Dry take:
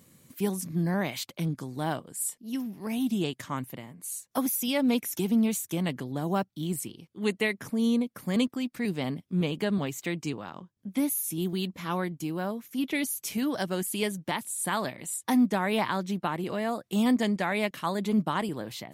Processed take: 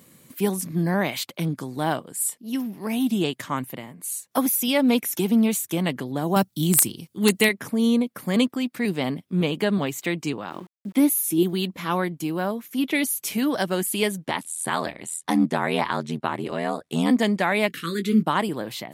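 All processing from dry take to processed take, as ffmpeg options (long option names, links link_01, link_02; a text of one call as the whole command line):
ffmpeg -i in.wav -filter_complex "[0:a]asettb=1/sr,asplit=3[link_01][link_02][link_03];[link_01]atrim=end=6.364[link_04];[link_02]atrim=start=6.36:end=7.49,asetpts=PTS-STARTPTS,afade=type=in:duration=0.004:curve=qsin,afade=type=out:start_time=1.126:duration=0.004:curve=qsin,bass=frequency=250:gain=8,treble=frequency=4000:gain=13,aeval=exprs='(mod(3.98*val(0)+1,2)-1)/3.98':channel_layout=same[link_05];[link_03]atrim=start=7.486[link_06];[link_04][link_05]acrossfade=duration=0.004:curve1=hsin:curve2=qsin[link_07];[link_07][link_06]acrossfade=duration=0.004:curve1=qsin:curve2=hsin,asettb=1/sr,asplit=3[link_08][link_09][link_10];[link_08]atrim=end=10.504[link_11];[link_09]atrim=start=10.5:end=11.43,asetpts=PTS-STARTPTS,afade=type=in:duration=0.004:curve=qsin,afade=type=out:start_time=0.926:duration=0.004:curve=qsin,equalizer=frequency=340:width_type=o:width=0.38:gain=9.5,aeval=exprs='val(0)*gte(abs(val(0)),0.00211)':channel_layout=same[link_12];[link_10]atrim=start=11.426[link_13];[link_11][link_12]acrossfade=duration=0.004:curve1=hsin:curve2=qsin[link_14];[link_14][link_13]acrossfade=duration=0.004:curve1=qsin:curve2=hsin,asettb=1/sr,asplit=3[link_15][link_16][link_17];[link_15]atrim=end=14.254[link_18];[link_16]atrim=start=14.25:end=17.11,asetpts=PTS-STARTPTS,afade=type=in:duration=0.004:curve=qsin,afade=type=out:start_time=2.856:duration=0.004:curve=qsin,lowpass=frequency=11000:width=0.5412,lowpass=frequency=11000:width=1.3066,aeval=exprs='val(0)*sin(2*PI*41*n/s)':channel_layout=same[link_19];[link_17]atrim=start=17.106[link_20];[link_18][link_19]acrossfade=duration=0.004:curve1=hsin:curve2=qsin[link_21];[link_21][link_20]acrossfade=duration=0.004:curve1=qsin:curve2=hsin,asettb=1/sr,asplit=3[link_22][link_23][link_24];[link_22]atrim=end=17.684[link_25];[link_23]atrim=start=17.68:end=18.23,asetpts=PTS-STARTPTS,afade=type=in:duration=0.004:curve=qsin,afade=type=out:start_time=0.546:duration=0.004:curve=qsin,asuperstop=centerf=770:order=8:qfactor=0.94,asplit=2[link_26][link_27];[link_27]adelay=18,volume=-9dB[link_28];[link_26][link_28]amix=inputs=2:normalize=0,atrim=end_sample=24255[link_29];[link_24]atrim=start=18.226[link_30];[link_25][link_29]acrossfade=duration=0.004:curve1=hsin:curve2=qsin[link_31];[link_31][link_30]acrossfade=duration=0.004:curve1=qsin:curve2=hsin,highpass=frequency=180:poles=1,equalizer=frequency=6100:width_type=o:width=0.76:gain=-3.5,volume=7dB" out.wav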